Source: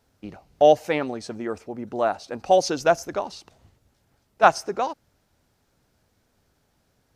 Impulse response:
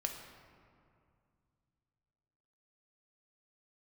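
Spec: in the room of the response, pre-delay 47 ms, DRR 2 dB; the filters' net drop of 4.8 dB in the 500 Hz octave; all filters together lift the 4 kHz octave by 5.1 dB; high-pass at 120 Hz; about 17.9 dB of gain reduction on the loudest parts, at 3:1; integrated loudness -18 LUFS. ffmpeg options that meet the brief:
-filter_complex "[0:a]highpass=120,equalizer=f=500:t=o:g=-6.5,equalizer=f=4000:t=o:g=7,acompressor=threshold=0.0141:ratio=3,asplit=2[s0][s1];[1:a]atrim=start_sample=2205,adelay=47[s2];[s1][s2]afir=irnorm=-1:irlink=0,volume=0.708[s3];[s0][s3]amix=inputs=2:normalize=0,volume=8.41"

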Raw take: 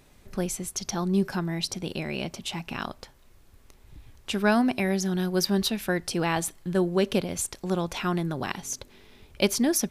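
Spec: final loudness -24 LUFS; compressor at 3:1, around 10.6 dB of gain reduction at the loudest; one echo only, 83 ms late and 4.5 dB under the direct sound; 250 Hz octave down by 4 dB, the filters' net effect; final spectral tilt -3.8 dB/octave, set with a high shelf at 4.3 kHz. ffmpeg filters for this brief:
-af "equalizer=f=250:t=o:g=-6,highshelf=f=4300:g=6,acompressor=threshold=0.0251:ratio=3,aecho=1:1:83:0.596,volume=2.82"

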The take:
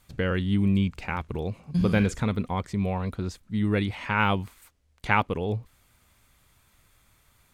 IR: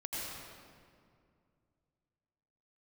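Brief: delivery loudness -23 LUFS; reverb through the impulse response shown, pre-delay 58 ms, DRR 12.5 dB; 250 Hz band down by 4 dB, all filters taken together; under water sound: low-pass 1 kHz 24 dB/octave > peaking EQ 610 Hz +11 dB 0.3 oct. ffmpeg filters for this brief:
-filter_complex "[0:a]equalizer=f=250:t=o:g=-6,asplit=2[s0][s1];[1:a]atrim=start_sample=2205,adelay=58[s2];[s1][s2]afir=irnorm=-1:irlink=0,volume=0.178[s3];[s0][s3]amix=inputs=2:normalize=0,lowpass=f=1000:w=0.5412,lowpass=f=1000:w=1.3066,equalizer=f=610:t=o:w=0.3:g=11,volume=2"

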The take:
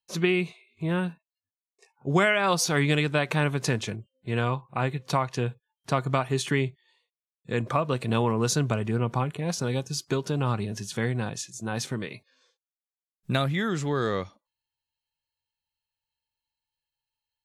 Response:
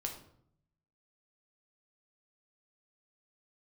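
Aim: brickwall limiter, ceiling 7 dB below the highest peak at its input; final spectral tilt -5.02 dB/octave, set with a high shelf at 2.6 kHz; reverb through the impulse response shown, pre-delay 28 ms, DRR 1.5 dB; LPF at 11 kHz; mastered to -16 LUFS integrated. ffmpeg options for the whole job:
-filter_complex "[0:a]lowpass=11000,highshelf=f=2600:g=3,alimiter=limit=0.15:level=0:latency=1,asplit=2[s0][s1];[1:a]atrim=start_sample=2205,adelay=28[s2];[s1][s2]afir=irnorm=-1:irlink=0,volume=0.841[s3];[s0][s3]amix=inputs=2:normalize=0,volume=3.16"

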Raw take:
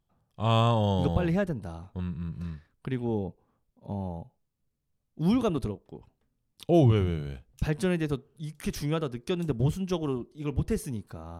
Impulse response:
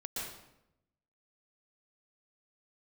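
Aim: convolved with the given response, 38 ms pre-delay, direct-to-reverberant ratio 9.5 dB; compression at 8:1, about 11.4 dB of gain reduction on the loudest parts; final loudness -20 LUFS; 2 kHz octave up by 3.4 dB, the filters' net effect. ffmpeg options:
-filter_complex "[0:a]equalizer=f=2000:t=o:g=4.5,acompressor=threshold=0.0398:ratio=8,asplit=2[s0][s1];[1:a]atrim=start_sample=2205,adelay=38[s2];[s1][s2]afir=irnorm=-1:irlink=0,volume=0.282[s3];[s0][s3]amix=inputs=2:normalize=0,volume=5.31"

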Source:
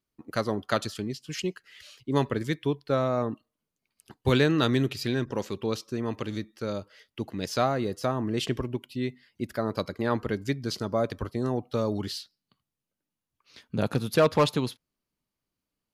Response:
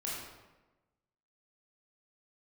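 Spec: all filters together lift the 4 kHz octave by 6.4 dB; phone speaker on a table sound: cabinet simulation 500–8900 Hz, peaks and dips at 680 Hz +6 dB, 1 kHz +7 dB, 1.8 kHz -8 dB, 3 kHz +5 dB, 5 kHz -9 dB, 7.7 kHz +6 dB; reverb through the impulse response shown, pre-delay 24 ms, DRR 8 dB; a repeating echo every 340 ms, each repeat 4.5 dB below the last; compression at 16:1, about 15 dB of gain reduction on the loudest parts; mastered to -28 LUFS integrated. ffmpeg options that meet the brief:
-filter_complex "[0:a]equalizer=f=4000:t=o:g=7.5,acompressor=threshold=0.0282:ratio=16,aecho=1:1:340|680|1020|1360|1700|2040|2380|2720|3060:0.596|0.357|0.214|0.129|0.0772|0.0463|0.0278|0.0167|0.01,asplit=2[s0][s1];[1:a]atrim=start_sample=2205,adelay=24[s2];[s1][s2]afir=irnorm=-1:irlink=0,volume=0.299[s3];[s0][s3]amix=inputs=2:normalize=0,highpass=f=500:w=0.5412,highpass=f=500:w=1.3066,equalizer=f=680:t=q:w=4:g=6,equalizer=f=1000:t=q:w=4:g=7,equalizer=f=1800:t=q:w=4:g=-8,equalizer=f=3000:t=q:w=4:g=5,equalizer=f=5000:t=q:w=4:g=-9,equalizer=f=7700:t=q:w=4:g=6,lowpass=f=8900:w=0.5412,lowpass=f=8900:w=1.3066,volume=2.99"

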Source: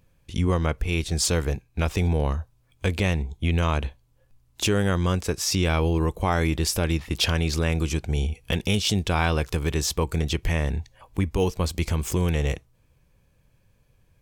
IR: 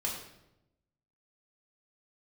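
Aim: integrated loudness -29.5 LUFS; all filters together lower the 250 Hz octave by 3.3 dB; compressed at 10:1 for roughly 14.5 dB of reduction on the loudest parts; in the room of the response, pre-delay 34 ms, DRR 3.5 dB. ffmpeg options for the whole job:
-filter_complex "[0:a]equalizer=f=250:t=o:g=-5.5,acompressor=threshold=0.02:ratio=10,asplit=2[s0][s1];[1:a]atrim=start_sample=2205,adelay=34[s2];[s1][s2]afir=irnorm=-1:irlink=0,volume=0.447[s3];[s0][s3]amix=inputs=2:normalize=0,volume=2.11"

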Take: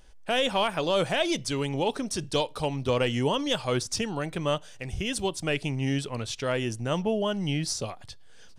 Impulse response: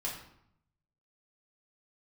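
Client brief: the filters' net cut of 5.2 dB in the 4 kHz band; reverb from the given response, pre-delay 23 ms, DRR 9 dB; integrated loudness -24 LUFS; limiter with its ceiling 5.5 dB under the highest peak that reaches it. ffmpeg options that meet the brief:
-filter_complex "[0:a]equalizer=f=4000:t=o:g=-7.5,alimiter=limit=0.0944:level=0:latency=1,asplit=2[s0][s1];[1:a]atrim=start_sample=2205,adelay=23[s2];[s1][s2]afir=irnorm=-1:irlink=0,volume=0.266[s3];[s0][s3]amix=inputs=2:normalize=0,volume=2.11"

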